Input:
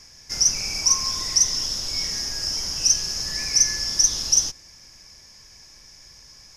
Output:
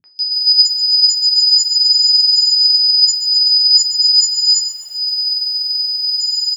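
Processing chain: partials quantised in pitch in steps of 6 st; frequency weighting ITU-R 468; transient shaper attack +5 dB, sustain -10 dB; in parallel at -0.5 dB: peak limiter -11 dBFS, peak gain reduction 27 dB; on the sum: compression 16:1, threshold -10 dBFS, peak gain reduction 21 dB; flange 0.42 Hz, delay 7.3 ms, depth 5 ms, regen +65%; high-order bell 6.5 kHz +8.5 dB; loudest bins only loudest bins 2; three bands offset in time lows, mids, highs 40/190 ms, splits 200/2200 Hz; reverberation RT60 0.35 s, pre-delay 3 ms, DRR 6.5 dB; bit-crushed delay 128 ms, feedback 55%, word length 6-bit, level -12 dB; trim -1 dB

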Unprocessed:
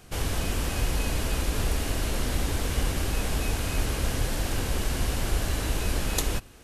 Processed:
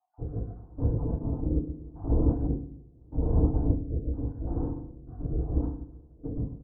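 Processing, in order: random holes in the spectrogram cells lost 48%; bass shelf 110 Hz -6.5 dB; de-hum 48.81 Hz, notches 21; trance gate "xxx.xxxx..xxx..." 77 bpm -24 dB; on a send: feedback delay 295 ms, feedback 58%, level -22.5 dB; on the sum: spectral gate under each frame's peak -25 dB strong; peak limiter -26.5 dBFS, peak gain reduction 6.5 dB; Bessel low-pass 540 Hz, order 8; bass shelf 360 Hz +4.5 dB; FDN reverb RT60 0.8 s, low-frequency decay 1.5×, high-frequency decay 0.85×, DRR -9.5 dB; rotary cabinet horn 0.8 Hz; upward expansion 1.5:1, over -46 dBFS

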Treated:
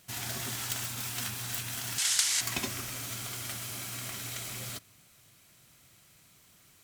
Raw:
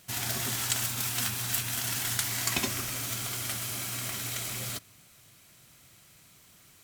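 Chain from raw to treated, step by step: self-modulated delay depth 0.058 ms; 1.98–2.41 s: frequency weighting ITU-R 468; trim -3 dB

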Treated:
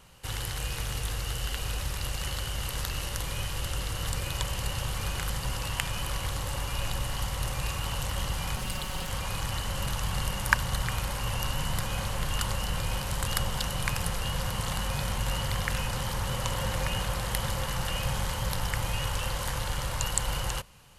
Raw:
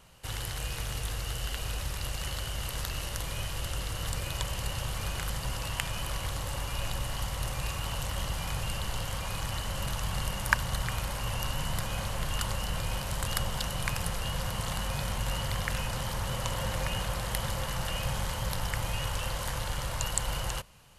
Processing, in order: 8.56–9.10 s: comb filter that takes the minimum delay 5.4 ms; band-stop 650 Hz, Q 12; trim +2 dB

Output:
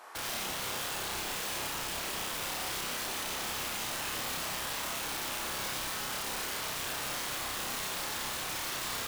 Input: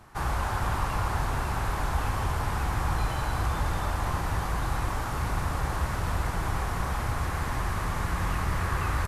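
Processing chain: high-pass 450 Hz 24 dB/octave; peak limiter -31.5 dBFS, peak gain reduction 11 dB; integer overflow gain 37 dB; flutter echo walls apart 5.3 m, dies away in 0.42 s; trim +4 dB

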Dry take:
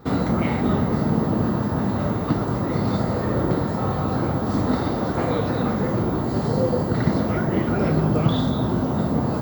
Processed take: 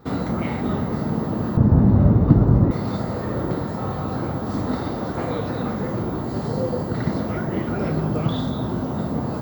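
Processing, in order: 1.57–2.71 s: tilt EQ -4.5 dB/octave; trim -3 dB

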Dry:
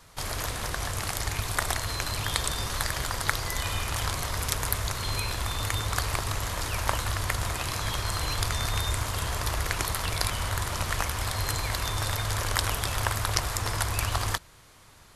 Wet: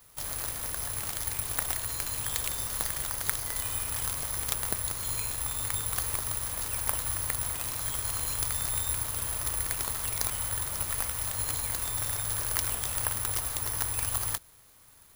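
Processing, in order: careless resampling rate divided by 4×, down none, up zero stuff; trim -9 dB

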